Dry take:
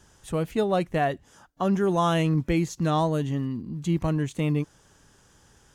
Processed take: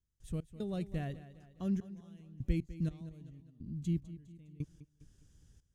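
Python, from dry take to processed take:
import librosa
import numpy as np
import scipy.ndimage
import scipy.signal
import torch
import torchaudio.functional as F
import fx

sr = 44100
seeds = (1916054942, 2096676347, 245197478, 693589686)

p1 = fx.step_gate(x, sr, bpm=75, pattern='.x.xxx.xx..', floor_db=-24.0, edge_ms=4.5)
p2 = fx.tone_stack(p1, sr, knobs='10-0-1')
p3 = fx.level_steps(p2, sr, step_db=20, at=(2.85, 3.46))
p4 = p3 + fx.echo_feedback(p3, sr, ms=204, feedback_pct=47, wet_db=-15.0, dry=0)
y = p4 * librosa.db_to_amplitude(7.5)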